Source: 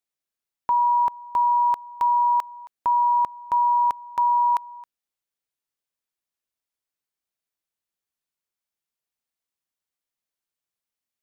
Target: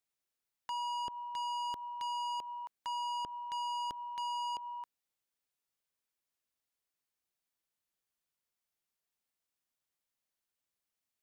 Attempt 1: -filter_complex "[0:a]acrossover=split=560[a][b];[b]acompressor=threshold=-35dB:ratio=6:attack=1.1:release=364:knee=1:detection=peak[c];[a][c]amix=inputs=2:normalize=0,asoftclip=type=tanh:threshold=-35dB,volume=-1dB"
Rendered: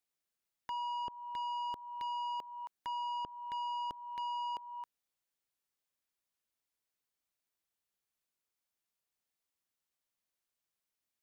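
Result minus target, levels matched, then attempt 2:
compressor: peak gain reduction +8 dB
-filter_complex "[0:a]acrossover=split=560[a][b];[b]acompressor=threshold=-25.5dB:ratio=6:attack=1.1:release=364:knee=1:detection=peak[c];[a][c]amix=inputs=2:normalize=0,asoftclip=type=tanh:threshold=-35dB,volume=-1dB"

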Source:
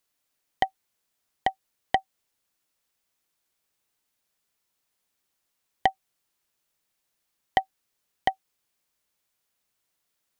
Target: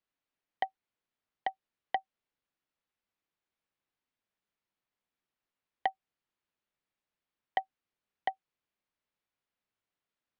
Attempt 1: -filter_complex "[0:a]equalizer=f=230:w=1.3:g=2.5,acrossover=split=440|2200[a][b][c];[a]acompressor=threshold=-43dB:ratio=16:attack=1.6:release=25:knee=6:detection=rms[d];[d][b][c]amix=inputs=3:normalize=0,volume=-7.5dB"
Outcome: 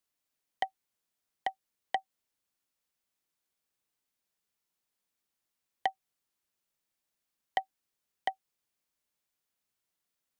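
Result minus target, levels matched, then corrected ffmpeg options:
4000 Hz band +3.0 dB
-filter_complex "[0:a]lowpass=3.1k,equalizer=f=230:w=1.3:g=2.5,acrossover=split=440|2200[a][b][c];[a]acompressor=threshold=-43dB:ratio=16:attack=1.6:release=25:knee=6:detection=rms[d];[d][b][c]amix=inputs=3:normalize=0,volume=-7.5dB"

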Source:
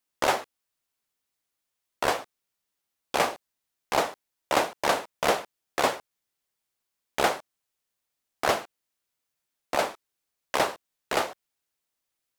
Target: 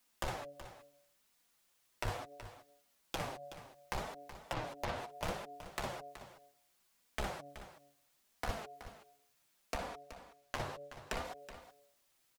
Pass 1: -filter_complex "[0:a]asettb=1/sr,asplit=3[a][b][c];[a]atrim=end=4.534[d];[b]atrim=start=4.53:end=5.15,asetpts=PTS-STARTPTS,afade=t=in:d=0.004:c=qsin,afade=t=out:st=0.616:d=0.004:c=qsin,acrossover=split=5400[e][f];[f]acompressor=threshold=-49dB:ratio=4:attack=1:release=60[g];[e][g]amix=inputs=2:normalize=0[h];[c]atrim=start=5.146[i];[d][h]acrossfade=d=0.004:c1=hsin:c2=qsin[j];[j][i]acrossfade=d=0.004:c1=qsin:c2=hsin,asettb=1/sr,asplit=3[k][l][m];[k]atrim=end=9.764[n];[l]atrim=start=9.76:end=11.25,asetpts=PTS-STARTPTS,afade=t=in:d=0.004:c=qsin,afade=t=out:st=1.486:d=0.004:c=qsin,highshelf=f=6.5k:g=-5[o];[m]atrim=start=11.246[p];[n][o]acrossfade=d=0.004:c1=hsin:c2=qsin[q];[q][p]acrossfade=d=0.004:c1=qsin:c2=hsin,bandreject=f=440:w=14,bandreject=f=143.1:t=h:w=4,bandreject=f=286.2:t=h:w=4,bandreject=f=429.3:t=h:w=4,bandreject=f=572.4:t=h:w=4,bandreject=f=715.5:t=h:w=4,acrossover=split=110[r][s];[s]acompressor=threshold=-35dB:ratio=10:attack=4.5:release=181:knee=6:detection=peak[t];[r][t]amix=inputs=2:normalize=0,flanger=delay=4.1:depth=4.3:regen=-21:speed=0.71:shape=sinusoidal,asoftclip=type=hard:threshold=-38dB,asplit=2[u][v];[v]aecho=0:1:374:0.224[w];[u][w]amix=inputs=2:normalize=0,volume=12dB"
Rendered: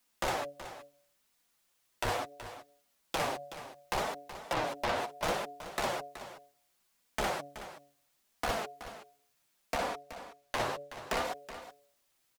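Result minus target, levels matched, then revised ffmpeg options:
compressor: peak gain reduction -10 dB
-filter_complex "[0:a]asettb=1/sr,asplit=3[a][b][c];[a]atrim=end=4.534[d];[b]atrim=start=4.53:end=5.15,asetpts=PTS-STARTPTS,afade=t=in:d=0.004:c=qsin,afade=t=out:st=0.616:d=0.004:c=qsin,acrossover=split=5400[e][f];[f]acompressor=threshold=-49dB:ratio=4:attack=1:release=60[g];[e][g]amix=inputs=2:normalize=0[h];[c]atrim=start=5.146[i];[d][h]acrossfade=d=0.004:c1=hsin:c2=qsin[j];[j][i]acrossfade=d=0.004:c1=qsin:c2=hsin,asettb=1/sr,asplit=3[k][l][m];[k]atrim=end=9.764[n];[l]atrim=start=9.76:end=11.25,asetpts=PTS-STARTPTS,afade=t=in:d=0.004:c=qsin,afade=t=out:st=1.486:d=0.004:c=qsin,highshelf=f=6.5k:g=-5[o];[m]atrim=start=11.246[p];[n][o]acrossfade=d=0.004:c1=hsin:c2=qsin[q];[q][p]acrossfade=d=0.004:c1=qsin:c2=hsin,bandreject=f=440:w=14,bandreject=f=143.1:t=h:w=4,bandreject=f=286.2:t=h:w=4,bandreject=f=429.3:t=h:w=4,bandreject=f=572.4:t=h:w=4,bandreject=f=715.5:t=h:w=4,acrossover=split=110[r][s];[s]acompressor=threshold=-46dB:ratio=10:attack=4.5:release=181:knee=6:detection=peak[t];[r][t]amix=inputs=2:normalize=0,flanger=delay=4.1:depth=4.3:regen=-21:speed=0.71:shape=sinusoidal,asoftclip=type=hard:threshold=-38dB,asplit=2[u][v];[v]aecho=0:1:374:0.224[w];[u][w]amix=inputs=2:normalize=0,volume=12dB"

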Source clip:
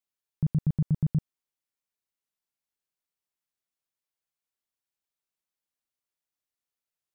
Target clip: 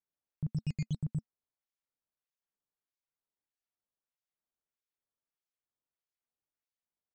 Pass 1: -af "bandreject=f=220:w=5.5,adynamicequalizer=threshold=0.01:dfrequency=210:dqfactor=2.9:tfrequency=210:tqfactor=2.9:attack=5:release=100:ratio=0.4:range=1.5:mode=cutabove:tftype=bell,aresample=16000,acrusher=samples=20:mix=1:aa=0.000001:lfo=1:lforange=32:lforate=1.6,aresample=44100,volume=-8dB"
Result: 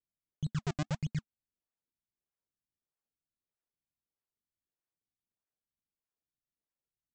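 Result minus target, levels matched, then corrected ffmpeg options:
decimation with a swept rate: distortion +15 dB
-af "bandreject=f=220:w=5.5,adynamicequalizer=threshold=0.01:dfrequency=210:dqfactor=2.9:tfrequency=210:tqfactor=2.9:attack=5:release=100:ratio=0.4:range=1.5:mode=cutabove:tftype=bell,aresample=16000,acrusher=samples=4:mix=1:aa=0.000001:lfo=1:lforange=6.4:lforate=1.6,aresample=44100,volume=-8dB"

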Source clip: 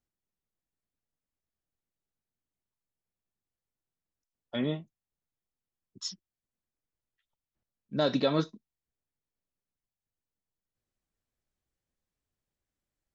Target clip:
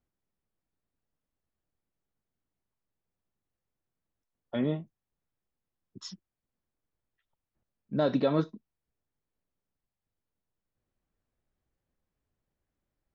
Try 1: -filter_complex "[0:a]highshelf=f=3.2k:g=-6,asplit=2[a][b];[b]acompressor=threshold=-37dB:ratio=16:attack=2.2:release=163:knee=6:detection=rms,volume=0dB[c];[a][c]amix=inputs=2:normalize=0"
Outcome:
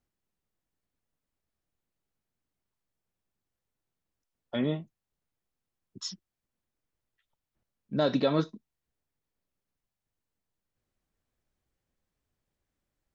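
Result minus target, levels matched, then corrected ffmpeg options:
8000 Hz band +8.0 dB
-filter_complex "[0:a]highshelf=f=3.2k:g=-17,asplit=2[a][b];[b]acompressor=threshold=-37dB:ratio=16:attack=2.2:release=163:knee=6:detection=rms,volume=0dB[c];[a][c]amix=inputs=2:normalize=0"

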